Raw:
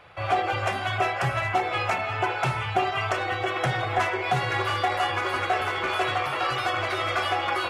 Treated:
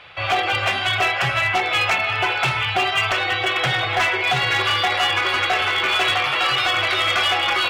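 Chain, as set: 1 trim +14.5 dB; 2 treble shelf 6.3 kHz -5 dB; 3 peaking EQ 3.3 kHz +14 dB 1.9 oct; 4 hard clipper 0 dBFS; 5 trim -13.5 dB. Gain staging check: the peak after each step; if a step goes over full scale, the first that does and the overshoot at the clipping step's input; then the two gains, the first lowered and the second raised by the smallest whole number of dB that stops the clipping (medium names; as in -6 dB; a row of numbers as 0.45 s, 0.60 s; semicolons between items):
+3.0 dBFS, +2.5 dBFS, +8.0 dBFS, 0.0 dBFS, -13.5 dBFS; step 1, 8.0 dB; step 1 +6.5 dB, step 5 -5.5 dB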